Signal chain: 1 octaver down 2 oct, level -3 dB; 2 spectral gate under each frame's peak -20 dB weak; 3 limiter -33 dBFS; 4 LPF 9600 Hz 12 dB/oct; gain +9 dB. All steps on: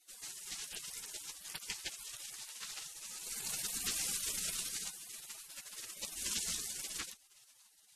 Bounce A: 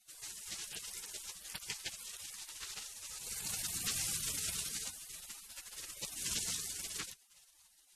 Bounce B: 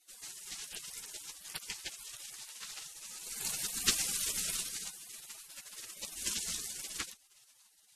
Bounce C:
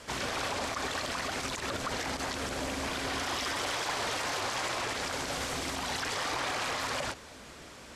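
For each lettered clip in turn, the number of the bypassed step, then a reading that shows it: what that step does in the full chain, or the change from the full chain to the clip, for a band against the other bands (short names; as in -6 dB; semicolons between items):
1, 125 Hz band +6.0 dB; 3, crest factor change +9.0 dB; 2, 8 kHz band -18.5 dB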